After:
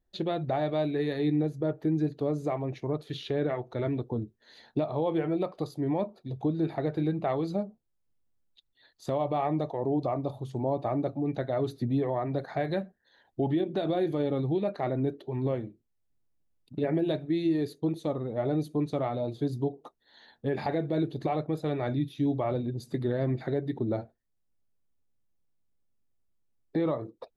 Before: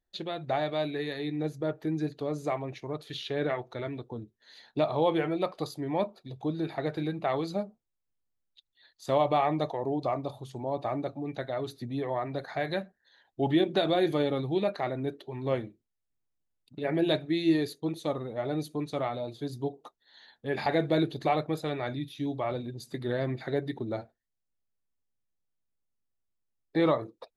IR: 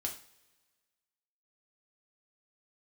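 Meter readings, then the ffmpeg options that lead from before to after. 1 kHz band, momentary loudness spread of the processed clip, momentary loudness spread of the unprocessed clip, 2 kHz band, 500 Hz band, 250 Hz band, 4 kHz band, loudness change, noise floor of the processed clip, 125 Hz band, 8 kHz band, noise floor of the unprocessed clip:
-2.5 dB, 6 LU, 11 LU, -5.5 dB, 0.0 dB, +2.0 dB, -7.0 dB, +0.5 dB, -75 dBFS, +4.0 dB, no reading, -82 dBFS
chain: -af "tiltshelf=f=860:g=5.5,alimiter=limit=0.0794:level=0:latency=1:release=455,volume=1.41"

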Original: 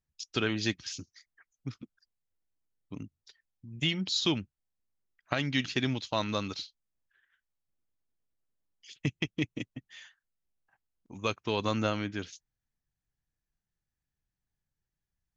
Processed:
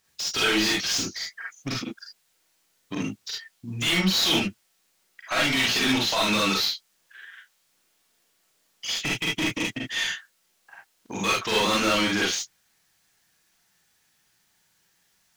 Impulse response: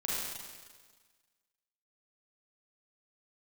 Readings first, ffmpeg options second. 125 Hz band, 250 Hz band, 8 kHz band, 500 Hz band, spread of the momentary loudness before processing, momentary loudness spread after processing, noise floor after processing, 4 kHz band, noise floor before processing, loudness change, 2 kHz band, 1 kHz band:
+1.5 dB, +6.0 dB, no reading, +6.0 dB, 19 LU, 14 LU, -69 dBFS, +11.5 dB, under -85 dBFS, +8.0 dB, +12.0 dB, +9.5 dB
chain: -filter_complex "[0:a]highshelf=f=3400:g=11.5,asplit=2[s0][s1];[s1]highpass=f=720:p=1,volume=56.2,asoftclip=type=tanh:threshold=0.316[s2];[s0][s2]amix=inputs=2:normalize=0,lowpass=f=3400:p=1,volume=0.501[s3];[1:a]atrim=start_sample=2205,atrim=end_sample=3528[s4];[s3][s4]afir=irnorm=-1:irlink=0,volume=0.501"

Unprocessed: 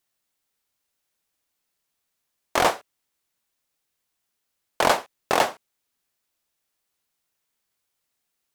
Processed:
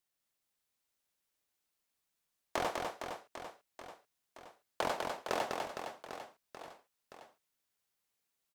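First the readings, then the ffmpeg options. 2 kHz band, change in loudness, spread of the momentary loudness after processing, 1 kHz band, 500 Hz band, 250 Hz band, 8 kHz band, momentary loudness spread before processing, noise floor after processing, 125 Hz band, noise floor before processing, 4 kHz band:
-13.5 dB, -16.0 dB, 21 LU, -13.0 dB, -12.0 dB, -11.0 dB, -15.0 dB, 5 LU, -85 dBFS, -11.5 dB, -79 dBFS, -14.0 dB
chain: -filter_complex "[0:a]acrossover=split=800|6800[s0][s1][s2];[s0]acompressor=threshold=0.0447:ratio=4[s3];[s1]acompressor=threshold=0.0316:ratio=4[s4];[s2]acompressor=threshold=0.00398:ratio=4[s5];[s3][s4][s5]amix=inputs=3:normalize=0,aecho=1:1:200|460|798|1237|1809:0.631|0.398|0.251|0.158|0.1,volume=0.398"

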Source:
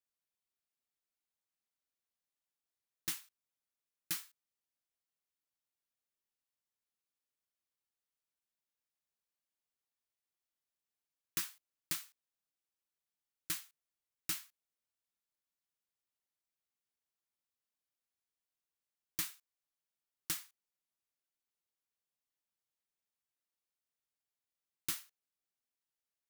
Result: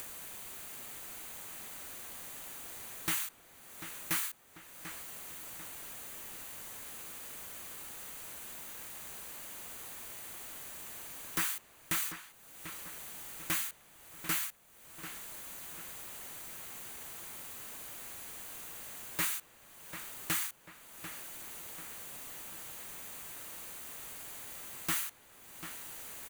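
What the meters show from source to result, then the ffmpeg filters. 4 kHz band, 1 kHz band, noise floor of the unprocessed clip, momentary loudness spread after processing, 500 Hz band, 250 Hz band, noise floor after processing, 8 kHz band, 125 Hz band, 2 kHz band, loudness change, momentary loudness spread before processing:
+6.0 dB, +15.0 dB, under -85 dBFS, 11 LU, +16.0 dB, +11.0 dB, -60 dBFS, +8.0 dB, +10.5 dB, +12.0 dB, +1.5 dB, 17 LU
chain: -filter_complex "[0:a]acrossover=split=2900[s0][s1];[s1]acompressor=threshold=0.00891:ratio=4:attack=1:release=60[s2];[s0][s2]amix=inputs=2:normalize=0,bandreject=f=5300:w=5.4,acompressor=mode=upward:threshold=0.00158:ratio=2.5,aeval=exprs='0.0668*sin(PI/2*5.62*val(0)/0.0668)':c=same,alimiter=level_in=3.35:limit=0.0631:level=0:latency=1:release=49,volume=0.299,equalizer=f=4100:t=o:w=1:g=-5,asplit=2[s3][s4];[s4]adelay=742,lowpass=f=3300:p=1,volume=0.335,asplit=2[s5][s6];[s6]adelay=742,lowpass=f=3300:p=1,volume=0.46,asplit=2[s7][s8];[s8]adelay=742,lowpass=f=3300:p=1,volume=0.46,asplit=2[s9][s10];[s10]adelay=742,lowpass=f=3300:p=1,volume=0.46,asplit=2[s11][s12];[s12]adelay=742,lowpass=f=3300:p=1,volume=0.46[s13];[s3][s5][s7][s9][s11][s13]amix=inputs=6:normalize=0,volume=2.82"

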